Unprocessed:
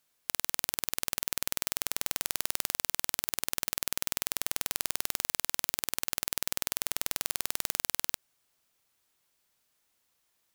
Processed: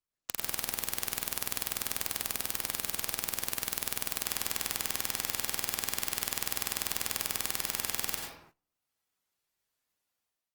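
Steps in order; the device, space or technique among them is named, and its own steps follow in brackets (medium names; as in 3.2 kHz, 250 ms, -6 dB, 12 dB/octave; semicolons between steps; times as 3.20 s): speakerphone in a meeting room (reverberation RT60 0.80 s, pre-delay 83 ms, DRR -0.5 dB; level rider gain up to 12.5 dB; gate -56 dBFS, range -21 dB; trim -2 dB; Opus 24 kbps 48 kHz)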